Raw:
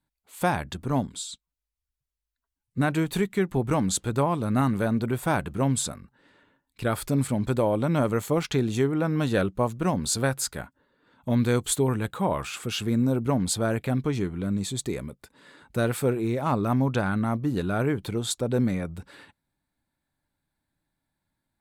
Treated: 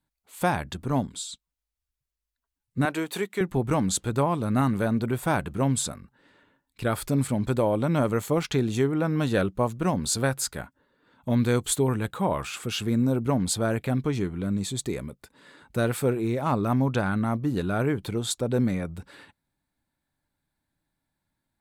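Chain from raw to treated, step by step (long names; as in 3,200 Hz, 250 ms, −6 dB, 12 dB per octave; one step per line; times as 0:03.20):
0:02.85–0:03.41: high-pass filter 330 Hz 12 dB per octave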